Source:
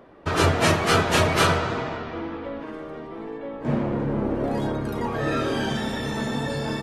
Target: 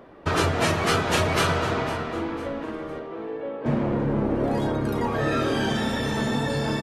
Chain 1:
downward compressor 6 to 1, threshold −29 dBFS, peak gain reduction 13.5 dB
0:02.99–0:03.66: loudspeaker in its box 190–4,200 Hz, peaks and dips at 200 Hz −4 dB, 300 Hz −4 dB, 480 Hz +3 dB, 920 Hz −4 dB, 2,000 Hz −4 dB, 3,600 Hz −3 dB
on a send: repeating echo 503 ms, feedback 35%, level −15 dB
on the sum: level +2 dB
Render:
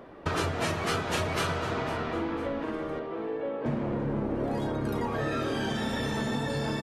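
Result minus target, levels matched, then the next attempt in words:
downward compressor: peak gain reduction +7 dB
downward compressor 6 to 1, threshold −20.5 dBFS, peak gain reduction 6.5 dB
0:02.99–0:03.66: loudspeaker in its box 190–4,200 Hz, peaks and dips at 200 Hz −4 dB, 300 Hz −4 dB, 480 Hz +3 dB, 920 Hz −4 dB, 2,000 Hz −4 dB, 3,600 Hz −3 dB
on a send: repeating echo 503 ms, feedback 35%, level −15 dB
on the sum: level +2 dB

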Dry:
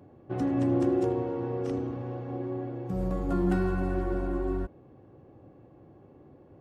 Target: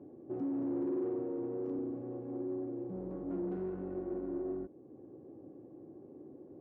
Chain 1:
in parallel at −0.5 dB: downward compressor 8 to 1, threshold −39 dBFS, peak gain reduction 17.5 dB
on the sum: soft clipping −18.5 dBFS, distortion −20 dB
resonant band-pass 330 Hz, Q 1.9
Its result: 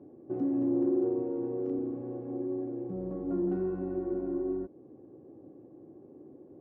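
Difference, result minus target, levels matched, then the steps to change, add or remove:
downward compressor: peak gain reduction −8 dB; soft clipping: distortion −11 dB
change: downward compressor 8 to 1, threshold −48 dBFS, peak gain reduction 25 dB
change: soft clipping −30 dBFS, distortion −8 dB

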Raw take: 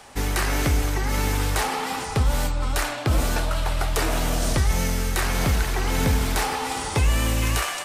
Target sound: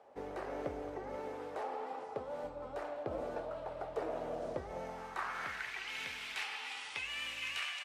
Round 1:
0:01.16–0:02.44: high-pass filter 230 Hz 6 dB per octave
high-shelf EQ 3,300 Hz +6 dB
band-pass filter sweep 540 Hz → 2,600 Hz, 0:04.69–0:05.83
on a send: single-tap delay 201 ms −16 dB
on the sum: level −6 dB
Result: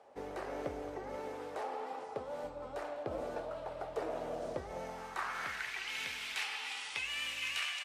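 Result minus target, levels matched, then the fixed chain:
8,000 Hz band +4.0 dB
0:01.16–0:02.44: high-pass filter 230 Hz 6 dB per octave
band-pass filter sweep 540 Hz → 2,600 Hz, 0:04.69–0:05.83
on a send: single-tap delay 201 ms −16 dB
on the sum: level −6 dB

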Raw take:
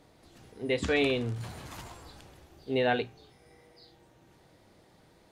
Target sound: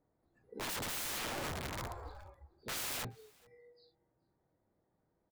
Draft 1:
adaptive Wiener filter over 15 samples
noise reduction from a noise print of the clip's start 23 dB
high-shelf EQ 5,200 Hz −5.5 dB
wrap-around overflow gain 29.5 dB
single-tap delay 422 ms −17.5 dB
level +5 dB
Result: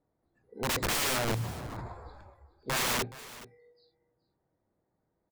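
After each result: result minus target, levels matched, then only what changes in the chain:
echo-to-direct +10 dB; wrap-around overflow: distortion −9 dB
change: single-tap delay 422 ms −27.5 dB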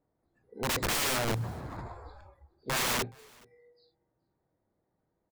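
wrap-around overflow: distortion −9 dB
change: wrap-around overflow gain 39.5 dB

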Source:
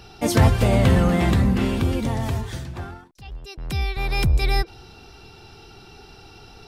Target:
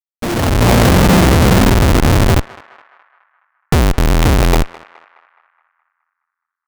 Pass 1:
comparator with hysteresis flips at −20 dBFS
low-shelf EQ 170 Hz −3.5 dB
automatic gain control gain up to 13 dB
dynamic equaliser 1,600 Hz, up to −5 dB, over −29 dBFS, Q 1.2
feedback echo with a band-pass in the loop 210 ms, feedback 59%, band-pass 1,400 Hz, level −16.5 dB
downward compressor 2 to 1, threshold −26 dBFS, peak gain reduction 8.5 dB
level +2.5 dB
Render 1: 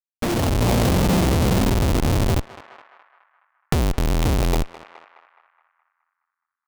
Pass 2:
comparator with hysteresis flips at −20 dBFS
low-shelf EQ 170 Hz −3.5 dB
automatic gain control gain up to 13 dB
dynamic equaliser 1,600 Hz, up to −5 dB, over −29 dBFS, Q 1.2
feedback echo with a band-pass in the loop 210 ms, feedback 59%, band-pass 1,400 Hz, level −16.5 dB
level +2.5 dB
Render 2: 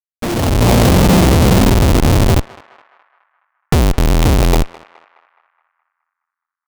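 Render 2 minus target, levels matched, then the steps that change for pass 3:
2,000 Hz band −3.5 dB
remove: dynamic equaliser 1,600 Hz, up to −5 dB, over −29 dBFS, Q 1.2

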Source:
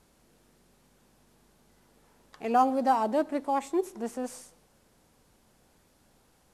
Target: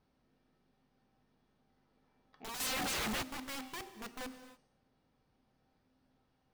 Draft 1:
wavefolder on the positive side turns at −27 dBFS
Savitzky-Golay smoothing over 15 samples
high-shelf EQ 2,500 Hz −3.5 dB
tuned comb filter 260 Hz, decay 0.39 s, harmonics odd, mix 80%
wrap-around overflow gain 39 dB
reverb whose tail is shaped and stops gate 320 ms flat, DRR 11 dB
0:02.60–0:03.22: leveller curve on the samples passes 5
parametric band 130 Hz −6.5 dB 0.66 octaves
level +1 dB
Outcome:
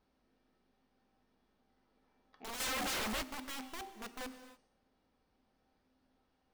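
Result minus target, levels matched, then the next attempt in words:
wavefolder on the positive side: distortion +10 dB; 125 Hz band −3.5 dB
wavefolder on the positive side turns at −20.5 dBFS
Savitzky-Golay smoothing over 15 samples
high-shelf EQ 2,500 Hz −3.5 dB
tuned comb filter 260 Hz, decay 0.39 s, harmonics odd, mix 80%
wrap-around overflow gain 39 dB
reverb whose tail is shaped and stops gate 320 ms flat, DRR 11 dB
0:02.60–0:03.22: leveller curve on the samples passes 5
parametric band 130 Hz +4.5 dB 0.66 octaves
level +1 dB

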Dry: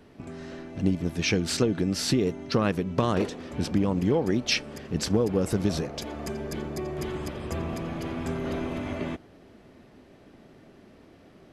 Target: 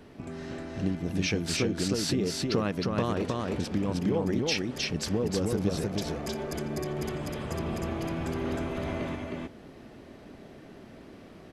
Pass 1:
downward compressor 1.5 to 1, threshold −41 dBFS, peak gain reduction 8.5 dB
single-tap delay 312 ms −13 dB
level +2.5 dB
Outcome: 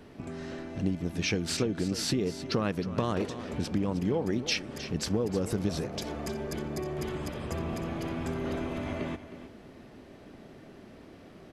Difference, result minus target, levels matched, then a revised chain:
echo-to-direct −10.5 dB
downward compressor 1.5 to 1, threshold −41 dBFS, peak gain reduction 8.5 dB
single-tap delay 312 ms −2.5 dB
level +2.5 dB

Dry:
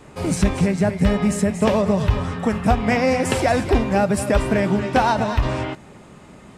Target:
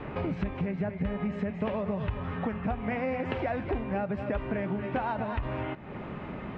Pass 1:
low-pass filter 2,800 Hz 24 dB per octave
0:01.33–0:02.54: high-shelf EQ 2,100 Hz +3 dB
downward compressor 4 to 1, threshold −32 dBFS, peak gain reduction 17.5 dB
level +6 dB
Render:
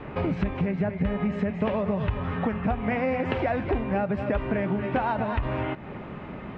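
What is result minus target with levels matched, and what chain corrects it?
downward compressor: peak gain reduction −5 dB
low-pass filter 2,800 Hz 24 dB per octave
0:01.33–0:02.54: high-shelf EQ 2,100 Hz +3 dB
downward compressor 4 to 1, threshold −38.5 dBFS, peak gain reduction 22.5 dB
level +6 dB

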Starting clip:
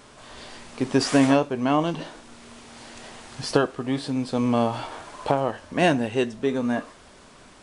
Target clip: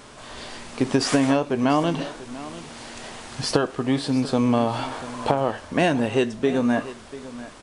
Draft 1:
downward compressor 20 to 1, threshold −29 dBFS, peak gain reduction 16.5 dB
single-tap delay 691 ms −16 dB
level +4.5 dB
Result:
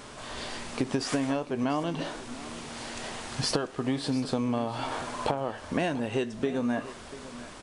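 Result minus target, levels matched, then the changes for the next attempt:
downward compressor: peak gain reduction +9 dB
change: downward compressor 20 to 1, threshold −19.5 dBFS, peak gain reduction 7.5 dB

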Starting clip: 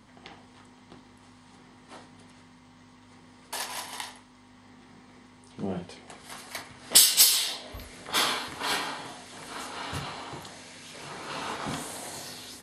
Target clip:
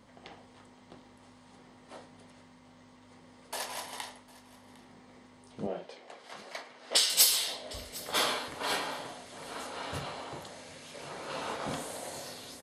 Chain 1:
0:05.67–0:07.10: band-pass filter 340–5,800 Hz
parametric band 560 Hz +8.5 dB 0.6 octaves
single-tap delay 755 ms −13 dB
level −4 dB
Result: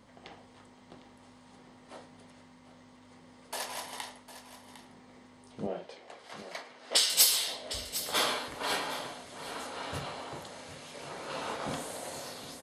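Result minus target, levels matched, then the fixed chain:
echo-to-direct +7.5 dB
0:05.67–0:07.10: band-pass filter 340–5,800 Hz
parametric band 560 Hz +8.5 dB 0.6 octaves
single-tap delay 755 ms −20.5 dB
level −4 dB

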